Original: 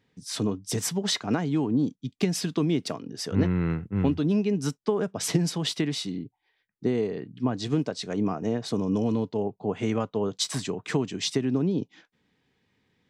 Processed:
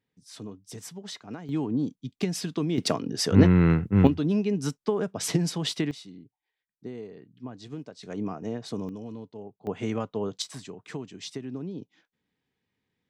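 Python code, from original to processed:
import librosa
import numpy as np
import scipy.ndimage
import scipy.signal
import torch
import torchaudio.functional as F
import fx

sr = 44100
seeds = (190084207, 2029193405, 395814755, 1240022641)

y = fx.gain(x, sr, db=fx.steps((0.0, -13.0), (1.49, -3.0), (2.78, 6.5), (4.07, -1.0), (5.91, -13.0), (8.03, -5.5), (8.89, -13.5), (9.67, -3.0), (10.42, -10.5)))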